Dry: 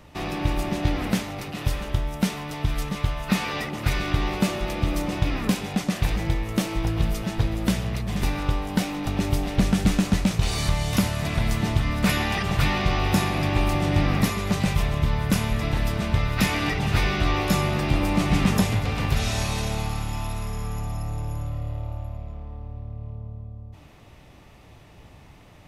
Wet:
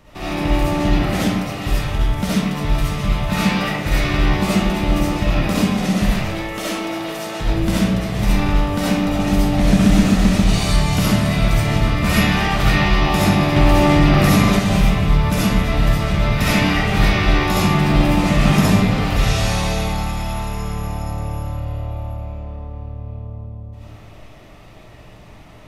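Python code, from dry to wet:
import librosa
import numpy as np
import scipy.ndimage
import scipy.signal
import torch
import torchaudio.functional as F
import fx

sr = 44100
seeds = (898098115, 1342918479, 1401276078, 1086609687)

y = fx.highpass(x, sr, hz=400.0, slope=12, at=(6.07, 7.41))
y = fx.rev_freeverb(y, sr, rt60_s=1.1, hf_ratio=0.55, predelay_ms=25, drr_db=-8.5)
y = fx.env_flatten(y, sr, amount_pct=50, at=(13.56, 14.59))
y = y * 10.0 ** (-1.5 / 20.0)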